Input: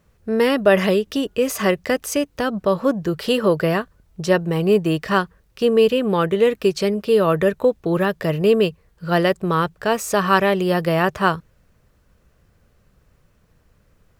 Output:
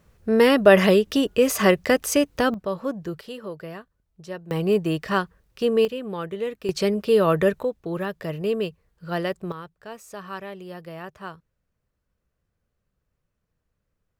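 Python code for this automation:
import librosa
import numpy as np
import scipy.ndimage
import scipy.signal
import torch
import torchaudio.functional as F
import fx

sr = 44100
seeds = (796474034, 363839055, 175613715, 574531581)

y = fx.gain(x, sr, db=fx.steps((0.0, 1.0), (2.54, -9.0), (3.21, -17.5), (4.51, -4.5), (5.85, -12.0), (6.69, -2.0), (7.63, -9.0), (9.52, -19.0)))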